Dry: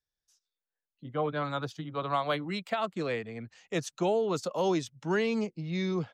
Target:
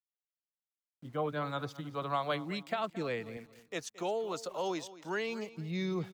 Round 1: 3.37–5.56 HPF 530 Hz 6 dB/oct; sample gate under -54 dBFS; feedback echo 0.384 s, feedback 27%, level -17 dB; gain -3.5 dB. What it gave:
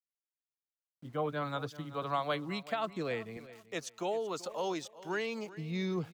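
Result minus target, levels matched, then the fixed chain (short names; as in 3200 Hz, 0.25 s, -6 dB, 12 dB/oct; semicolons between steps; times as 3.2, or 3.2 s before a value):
echo 0.161 s late
3.37–5.56 HPF 530 Hz 6 dB/oct; sample gate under -54 dBFS; feedback echo 0.223 s, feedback 27%, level -17 dB; gain -3.5 dB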